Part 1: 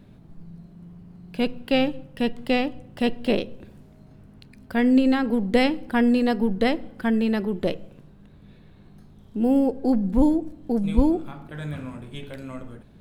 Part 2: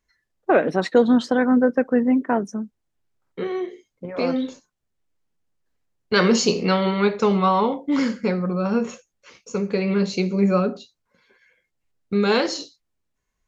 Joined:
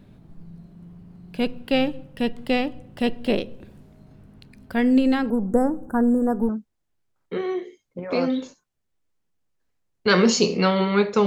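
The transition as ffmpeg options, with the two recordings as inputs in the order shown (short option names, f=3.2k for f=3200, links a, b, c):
-filter_complex "[0:a]asettb=1/sr,asplit=3[a][b][c];[a]atrim=end=5.304[d];[b]atrim=start=5.3:end=6.49,asetpts=PTS-STARTPTS,afade=t=in:d=0.004:c=qsin,afade=t=out:st=1.186:d=0.004:c=qsin,asuperstop=centerf=3200:order=12:qfactor=0.65[e];[c]atrim=start=6.486[f];[d][e]acrossfade=d=0.004:c1=hsin:c2=qsin[g];[g][f]acrossfade=d=0.004:c1=qsin:c2=hsin,apad=whole_dur=11.26,atrim=end=11.26,atrim=end=6.492[h];[1:a]atrim=start=2.548:end=7.32[i];[h][i]acrossfade=d=0.004:c1=hsin:c2=hsin"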